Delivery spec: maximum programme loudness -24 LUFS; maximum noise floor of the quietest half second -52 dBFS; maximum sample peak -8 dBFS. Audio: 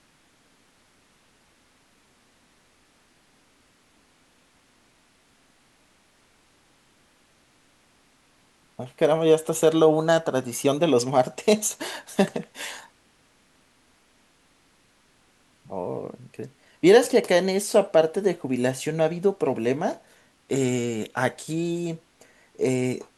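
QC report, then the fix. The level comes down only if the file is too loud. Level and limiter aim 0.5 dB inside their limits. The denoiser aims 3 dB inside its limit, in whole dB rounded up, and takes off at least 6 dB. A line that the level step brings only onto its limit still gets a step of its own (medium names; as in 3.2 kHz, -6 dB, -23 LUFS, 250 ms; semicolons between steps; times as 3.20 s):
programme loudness -23.0 LUFS: fail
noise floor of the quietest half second -62 dBFS: pass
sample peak -5.0 dBFS: fail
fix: trim -1.5 dB; peak limiter -8.5 dBFS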